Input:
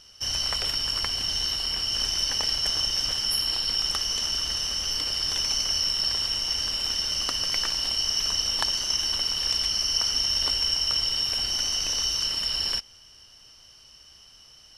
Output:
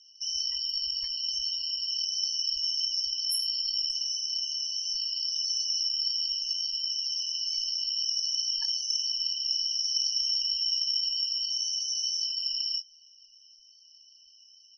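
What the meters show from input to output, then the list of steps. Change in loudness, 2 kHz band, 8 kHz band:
-3.5 dB, under -25 dB, -4.5 dB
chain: pre-emphasis filter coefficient 0.8; loudest bins only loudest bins 32; doubling 23 ms -9.5 dB

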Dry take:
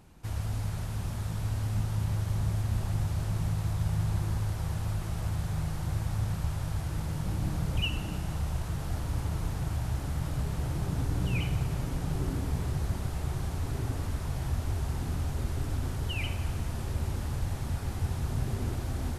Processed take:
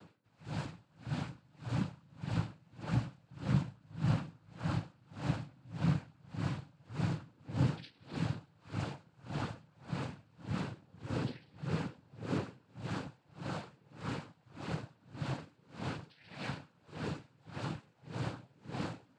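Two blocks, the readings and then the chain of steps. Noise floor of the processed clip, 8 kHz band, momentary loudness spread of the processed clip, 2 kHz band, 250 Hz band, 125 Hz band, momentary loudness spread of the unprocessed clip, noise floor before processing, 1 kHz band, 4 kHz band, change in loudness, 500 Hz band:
-69 dBFS, -14.0 dB, 14 LU, -4.0 dB, -2.0 dB, -8.5 dB, 4 LU, -36 dBFS, -3.5 dB, -8.0 dB, -7.0 dB, -3.0 dB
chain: elliptic low-pass 4.7 kHz; chord resonator D#3 major, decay 0.2 s; noise-vocoded speech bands 8; logarithmic tremolo 1.7 Hz, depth 33 dB; trim +18 dB

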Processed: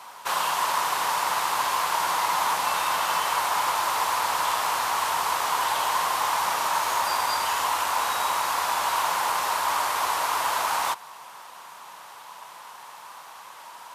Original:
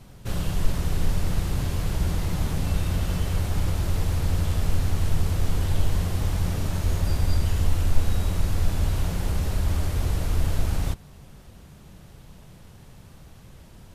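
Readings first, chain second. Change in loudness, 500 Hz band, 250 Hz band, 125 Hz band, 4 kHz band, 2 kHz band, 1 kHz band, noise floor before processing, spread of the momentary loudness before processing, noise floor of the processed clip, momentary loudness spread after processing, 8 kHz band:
+2.5 dB, +2.0 dB, -15.0 dB, under -25 dB, +9.5 dB, +12.0 dB, +18.5 dB, -48 dBFS, 3 LU, -45 dBFS, 19 LU, +9.0 dB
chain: resonant high-pass 980 Hz, resonance Q 5; trim +9 dB

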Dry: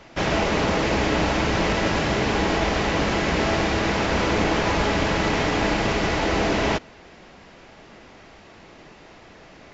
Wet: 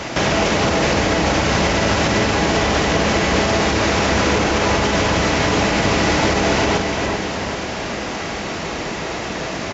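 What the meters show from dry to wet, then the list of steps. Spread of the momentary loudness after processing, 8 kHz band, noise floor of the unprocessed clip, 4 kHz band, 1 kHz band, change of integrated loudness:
9 LU, no reading, -48 dBFS, +7.0 dB, +5.5 dB, +4.0 dB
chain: high-pass 47 Hz; peaking EQ 6.6 kHz +5.5 dB 0.9 oct; compression 6:1, threshold -35 dBFS, peak gain reduction 16.5 dB; doubling 50 ms -11 dB; on a send: two-band feedback delay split 1.9 kHz, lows 391 ms, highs 291 ms, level -6 dB; on the sum: loudness maximiser +26 dB; trim -6.5 dB

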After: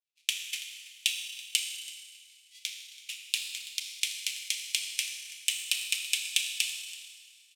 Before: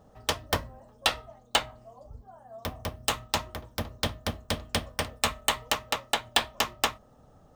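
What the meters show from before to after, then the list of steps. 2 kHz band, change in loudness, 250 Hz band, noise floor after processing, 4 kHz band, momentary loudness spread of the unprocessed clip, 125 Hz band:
-2.5 dB, -1.5 dB, under -35 dB, -61 dBFS, -0.5 dB, 15 LU, under -40 dB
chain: square wave that keeps the level; low-pass 9.9 kHz 12 dB/octave; expander -40 dBFS; Chebyshev high-pass 2.4 kHz, order 5; dynamic bell 4.4 kHz, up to -6 dB, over -44 dBFS, Q 1.9; compression 6:1, threshold -32 dBFS, peak gain reduction 11.5 dB; trance gate "xxxxx.x.x" 170 bpm -60 dB; delay 331 ms -15.5 dB; Schroeder reverb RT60 2.8 s, combs from 26 ms, DRR 2.5 dB; three bands expanded up and down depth 40%; trim +6 dB

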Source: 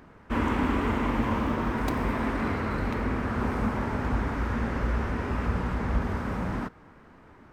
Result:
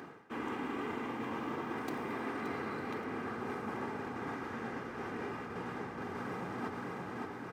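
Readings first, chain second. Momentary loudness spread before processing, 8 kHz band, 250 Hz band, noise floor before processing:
4 LU, no reading, -11.0 dB, -53 dBFS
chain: feedback delay 574 ms, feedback 40%, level -11.5 dB; reverse; compression 8:1, threshold -40 dBFS, peak gain reduction 18.5 dB; reverse; high-pass 140 Hz 24 dB/octave; comb 2.5 ms, depth 43%; trim +5.5 dB

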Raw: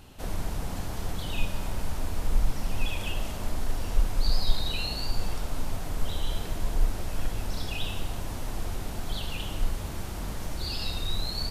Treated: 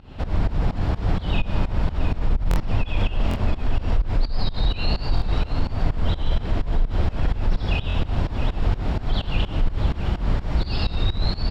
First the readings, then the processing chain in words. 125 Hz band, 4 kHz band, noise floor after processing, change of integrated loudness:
+10.5 dB, +1.0 dB, -34 dBFS, +8.0 dB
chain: octave divider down 2 oct, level -6 dB; high-pass 52 Hz 6 dB/octave; bass shelf 110 Hz +9.5 dB; band-stop 6.2 kHz, Q 8.7; on a send: delay 666 ms -11.5 dB; on the sum: peak limiter -19 dBFS, peak gain reduction 9.5 dB; in parallel at -2 dB: compressor with a negative ratio -27 dBFS; on the sum: distance through air 210 m; volume shaper 127 bpm, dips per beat 2, -19 dB, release 201 ms; buffer glitch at 2.49/3.29/5.15/7.88 s, samples 1024, times 2; trim +5 dB

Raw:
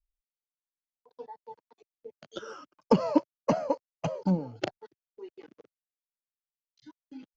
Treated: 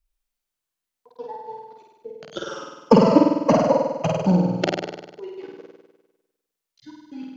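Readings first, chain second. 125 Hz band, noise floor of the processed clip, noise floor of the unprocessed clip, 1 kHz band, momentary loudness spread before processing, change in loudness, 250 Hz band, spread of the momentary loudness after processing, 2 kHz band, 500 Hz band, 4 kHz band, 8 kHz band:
+10.5 dB, -85 dBFS, under -85 dBFS, +10.5 dB, 22 LU, +10.5 dB, +10.5 dB, 21 LU, +10.5 dB, +11.0 dB, +11.0 dB, no reading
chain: flutter echo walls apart 8.6 m, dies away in 1.1 s; trim +7.5 dB

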